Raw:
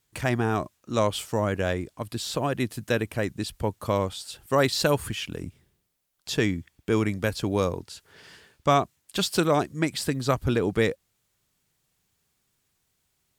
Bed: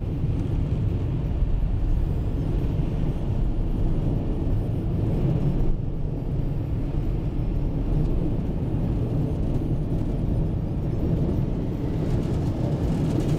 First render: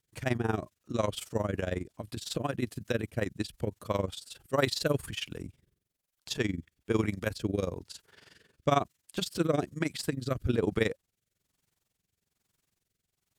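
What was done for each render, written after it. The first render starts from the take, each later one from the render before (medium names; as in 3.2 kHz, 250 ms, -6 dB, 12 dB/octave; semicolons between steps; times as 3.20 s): rotary cabinet horn 5.5 Hz, later 1.1 Hz, at 4.03 s; AM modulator 22 Hz, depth 75%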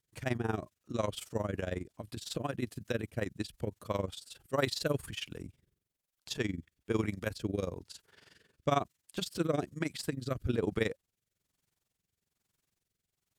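trim -3.5 dB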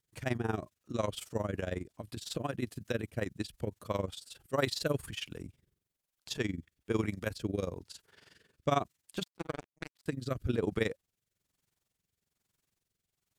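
9.23–10.06 s: power-law waveshaper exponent 3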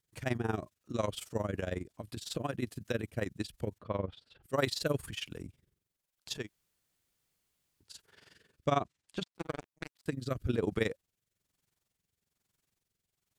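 3.78–4.43 s: distance through air 360 m; 6.41–7.87 s: room tone, crossfade 0.16 s; 8.70–9.35 s: distance through air 66 m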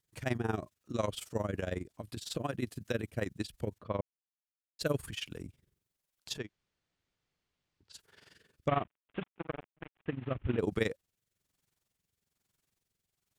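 4.01–4.79 s: mute; 6.38–7.93 s: distance through air 130 m; 8.68–10.59 s: CVSD coder 16 kbps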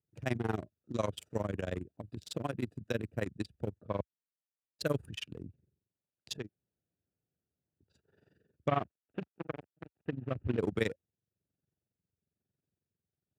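local Wiener filter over 41 samples; high-pass 70 Hz 24 dB/octave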